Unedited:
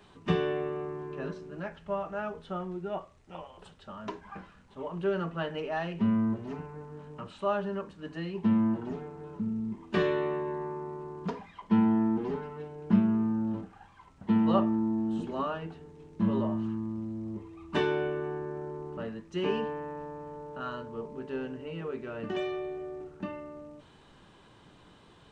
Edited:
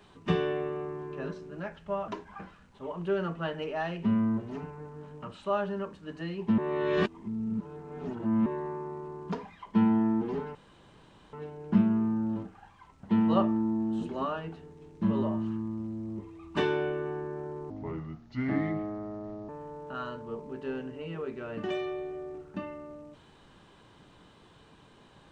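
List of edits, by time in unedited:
0:02.08–0:04.04: remove
0:08.54–0:10.42: reverse
0:12.51: splice in room tone 0.78 s
0:18.88–0:20.15: play speed 71%

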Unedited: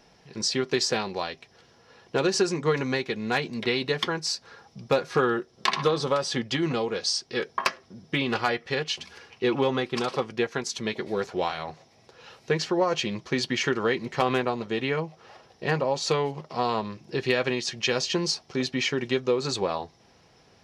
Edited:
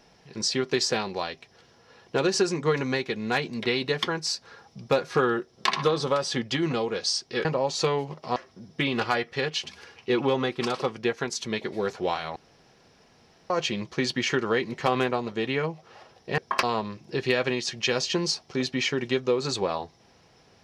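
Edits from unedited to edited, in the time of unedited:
0:07.45–0:07.70: swap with 0:15.72–0:16.63
0:11.70–0:12.84: fill with room tone

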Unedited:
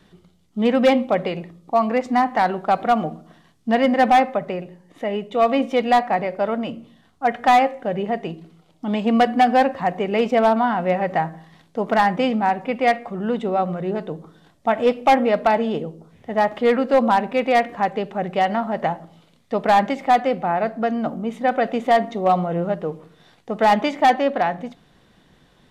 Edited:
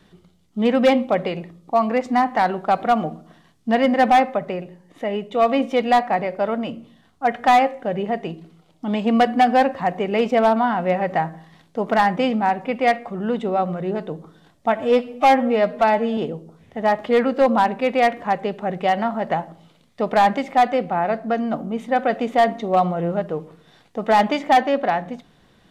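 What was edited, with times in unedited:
0:14.75–0:15.70: time-stretch 1.5×

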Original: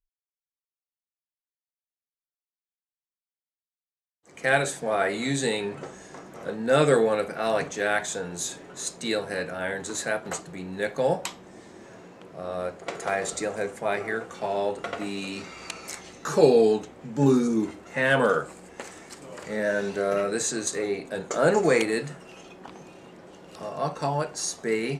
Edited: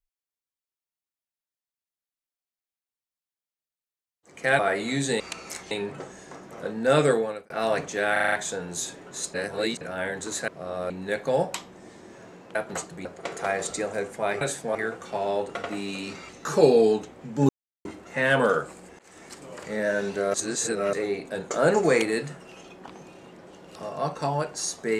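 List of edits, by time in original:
0:04.59–0:04.93: move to 0:14.04
0:06.86–0:07.33: fade out
0:07.95: stutter 0.04 s, 6 plays
0:08.97–0:09.44: reverse
0:10.11–0:10.61: swap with 0:12.26–0:12.68
0:15.58–0:16.09: move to 0:05.54
0:17.29–0:17.65: silence
0:18.79–0:19.06: fade in
0:20.14–0:20.73: reverse

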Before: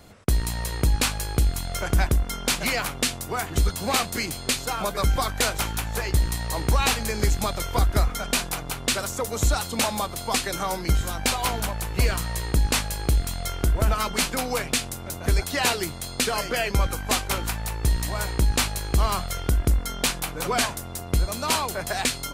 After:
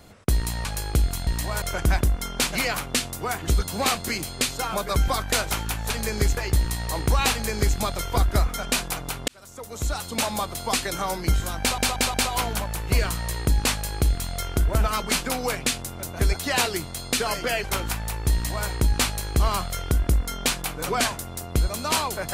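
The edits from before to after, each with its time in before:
0:00.65–0:01.08: remove
0:06.92–0:07.39: duplicate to 0:05.98
0:08.89–0:10.00: fade in
0:11.21: stutter 0.18 s, 4 plays
0:16.71–0:17.22: remove
0:17.91–0:18.26: duplicate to 0:01.70

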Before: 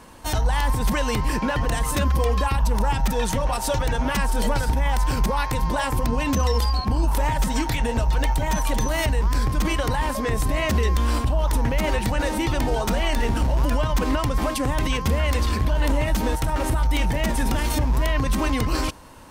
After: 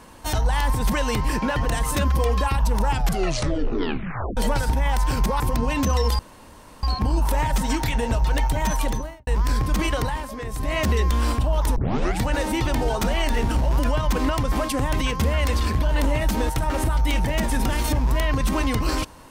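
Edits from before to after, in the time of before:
0:02.90: tape stop 1.47 s
0:05.40–0:05.90: remove
0:06.69: splice in room tone 0.64 s
0:08.64–0:09.13: fade out and dull
0:09.85–0:10.64: duck −8 dB, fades 0.25 s
0:11.62: tape start 0.45 s

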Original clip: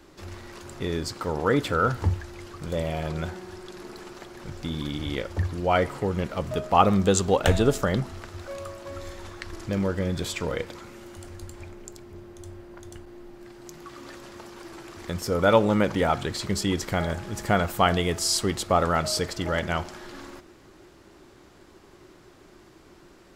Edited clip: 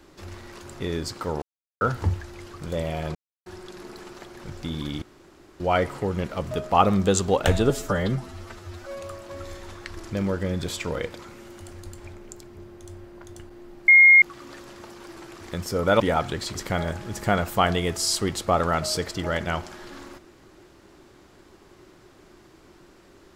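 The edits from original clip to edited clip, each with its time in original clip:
0:01.42–0:01.81: silence
0:03.15–0:03.46: silence
0:05.02–0:05.60: fill with room tone
0:07.70–0:08.58: time-stretch 1.5×
0:13.44–0:13.78: beep over 2,140 Hz −9 dBFS
0:15.56–0:15.93: remove
0:16.48–0:16.77: remove

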